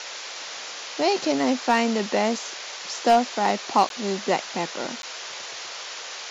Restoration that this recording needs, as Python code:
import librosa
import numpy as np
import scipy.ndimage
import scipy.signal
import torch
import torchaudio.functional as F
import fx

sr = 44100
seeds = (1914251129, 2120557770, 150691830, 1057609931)

y = fx.fix_declip(x, sr, threshold_db=-9.5)
y = fx.fix_interpolate(y, sr, at_s=(3.89, 5.02), length_ms=12.0)
y = fx.noise_reduce(y, sr, print_start_s=0.02, print_end_s=0.52, reduce_db=30.0)